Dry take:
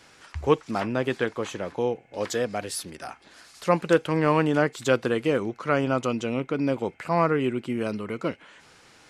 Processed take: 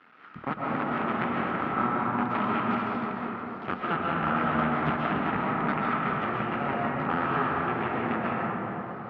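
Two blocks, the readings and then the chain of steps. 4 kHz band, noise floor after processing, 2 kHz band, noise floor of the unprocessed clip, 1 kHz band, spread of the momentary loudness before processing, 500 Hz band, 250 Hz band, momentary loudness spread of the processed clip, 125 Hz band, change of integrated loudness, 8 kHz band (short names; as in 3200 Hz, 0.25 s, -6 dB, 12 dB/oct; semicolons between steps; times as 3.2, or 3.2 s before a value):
-6.5 dB, -41 dBFS, +1.0 dB, -55 dBFS, +3.5 dB, 11 LU, -8.5 dB, -2.0 dB, 7 LU, -3.5 dB, -2.5 dB, under -35 dB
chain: cycle switcher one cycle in 2, muted; compressor 6:1, threshold -29 dBFS, peak gain reduction 14 dB; added harmonics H 7 -11 dB, 8 -15 dB, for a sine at -15 dBFS; speaker cabinet 170–2700 Hz, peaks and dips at 230 Hz +7 dB, 570 Hz -5 dB, 1300 Hz +10 dB; digital reverb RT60 4.4 s, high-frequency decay 0.25×, pre-delay 95 ms, DRR -5.5 dB; gain -1.5 dB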